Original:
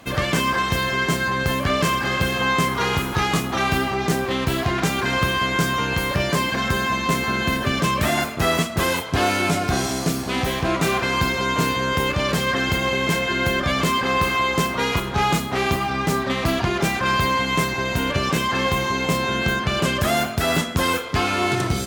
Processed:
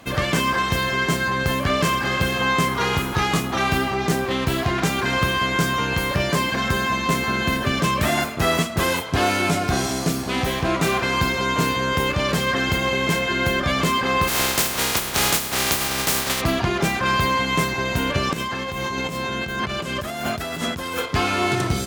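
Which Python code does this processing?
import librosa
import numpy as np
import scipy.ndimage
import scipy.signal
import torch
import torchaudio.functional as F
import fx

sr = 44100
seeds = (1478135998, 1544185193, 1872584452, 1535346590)

y = fx.spec_flatten(x, sr, power=0.3, at=(14.27, 16.4), fade=0.02)
y = fx.over_compress(y, sr, threshold_db=-27.0, ratio=-1.0, at=(18.33, 21.06))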